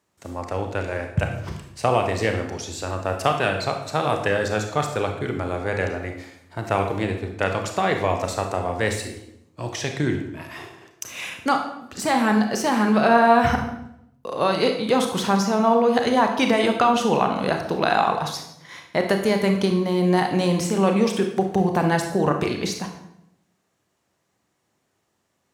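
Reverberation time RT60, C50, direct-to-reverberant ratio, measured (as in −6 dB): 0.80 s, 7.0 dB, 4.0 dB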